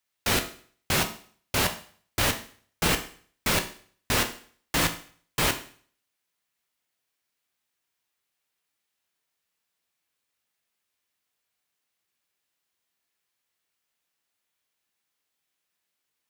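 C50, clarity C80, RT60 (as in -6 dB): 12.0 dB, 16.0 dB, 0.50 s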